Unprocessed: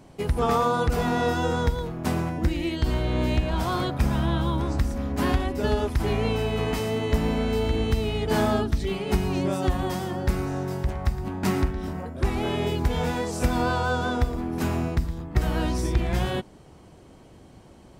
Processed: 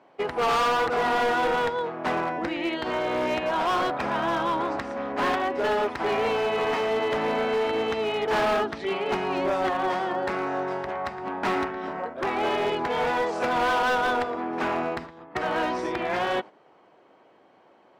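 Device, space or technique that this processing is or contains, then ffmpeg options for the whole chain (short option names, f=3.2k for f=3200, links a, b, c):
walkie-talkie: -af "highpass=540,lowpass=2.2k,asoftclip=type=hard:threshold=-29dB,agate=range=-8dB:threshold=-45dB:ratio=16:detection=peak,volume=8.5dB"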